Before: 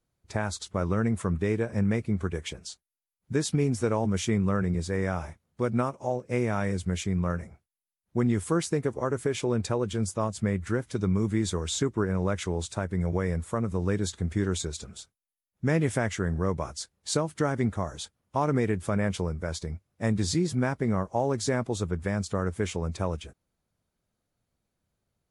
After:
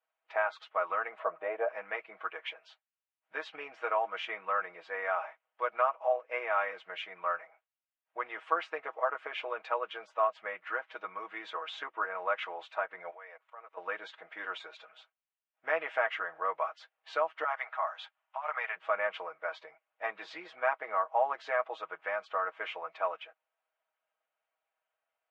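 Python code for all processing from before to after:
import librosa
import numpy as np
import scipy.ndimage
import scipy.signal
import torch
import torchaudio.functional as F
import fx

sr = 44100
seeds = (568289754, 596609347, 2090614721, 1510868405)

y = fx.chain(x, sr, fx.lowpass(hz=1200.0, slope=6),
    fx.peak_eq(hz=610.0, db=13.0, octaves=0.76),
    fx.resample_bad(factor=4, down='none', up='hold'), at=(1.19, 1.68))
y = fx.chain(y, sr, fx.highpass(hz=480.0, slope=12),
    fx.level_steps(step_db=23), at=(13.1, 13.77))
y = fx.chain(y, sr, fx.highpass(hz=690.0, slope=24),
    fx.over_compress(threshold_db=-34.0, ratio=-1.0), at=(17.44, 18.76))
y = scipy.signal.sosfilt(scipy.signal.ellip(3, 1.0, 80, [640.0, 2900.0], 'bandpass', fs=sr, output='sos'), y)
y = y + 0.79 * np.pad(y, (int(6.3 * sr / 1000.0), 0))[:len(y)]
y = fx.dynamic_eq(y, sr, hz=1200.0, q=4.2, threshold_db=-48.0, ratio=4.0, max_db=5)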